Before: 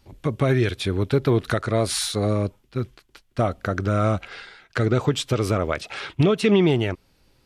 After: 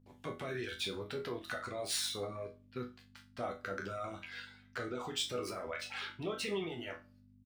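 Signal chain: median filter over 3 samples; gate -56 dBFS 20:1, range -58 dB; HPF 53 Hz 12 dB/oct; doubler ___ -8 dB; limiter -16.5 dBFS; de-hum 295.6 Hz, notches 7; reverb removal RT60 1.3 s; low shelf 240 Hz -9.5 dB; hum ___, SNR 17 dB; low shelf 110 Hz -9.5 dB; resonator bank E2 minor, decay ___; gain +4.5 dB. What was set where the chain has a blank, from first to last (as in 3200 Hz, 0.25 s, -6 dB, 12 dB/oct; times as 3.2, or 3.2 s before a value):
37 ms, 50 Hz, 0.29 s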